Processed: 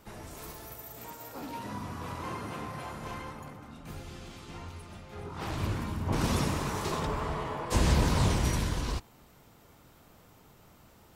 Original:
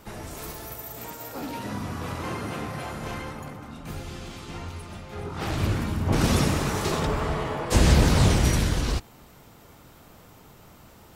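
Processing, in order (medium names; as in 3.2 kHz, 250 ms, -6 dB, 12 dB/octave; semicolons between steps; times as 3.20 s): dynamic bell 1 kHz, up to +7 dB, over -50 dBFS, Q 5.6; trim -7 dB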